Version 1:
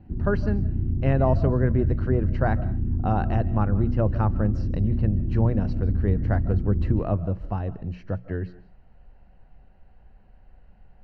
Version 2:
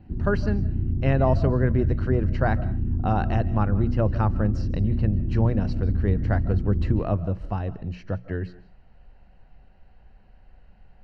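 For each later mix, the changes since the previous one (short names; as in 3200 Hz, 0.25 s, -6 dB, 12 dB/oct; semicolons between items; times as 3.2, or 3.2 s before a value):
master: add high shelf 2500 Hz +8.5 dB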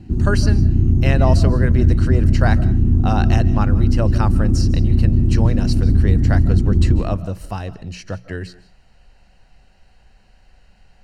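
background +10.5 dB; master: remove tape spacing loss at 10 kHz 38 dB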